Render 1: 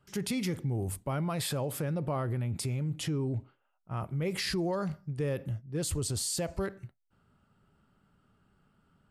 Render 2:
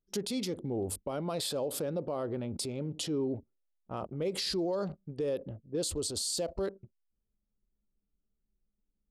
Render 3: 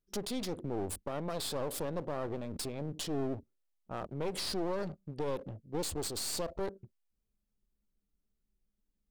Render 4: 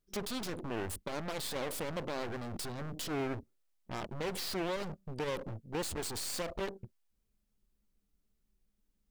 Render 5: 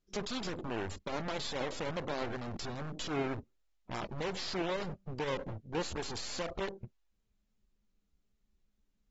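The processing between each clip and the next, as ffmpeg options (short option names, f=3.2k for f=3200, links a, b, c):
-af "anlmdn=0.1,equalizer=f=125:t=o:w=1:g=-11,equalizer=f=250:t=o:w=1:g=4,equalizer=f=500:t=o:w=1:g=8,equalizer=f=2k:t=o:w=1:g=-7,equalizer=f=4k:t=o:w=1:g=10,equalizer=f=8k:t=o:w=1:g=4,alimiter=level_in=1dB:limit=-24dB:level=0:latency=1:release=179,volume=-1dB"
-af "aeval=exprs='clip(val(0),-1,0.00708)':c=same"
-af "aeval=exprs='0.0596*(cos(1*acos(clip(val(0)/0.0596,-1,1)))-cos(1*PI/2))+0.0133*(cos(2*acos(clip(val(0)/0.0596,-1,1)))-cos(2*PI/2))+0.0119*(cos(6*acos(clip(val(0)/0.0596,-1,1)))-cos(6*PI/2))':c=same,volume=4dB"
-ar 44100 -c:a aac -b:a 24k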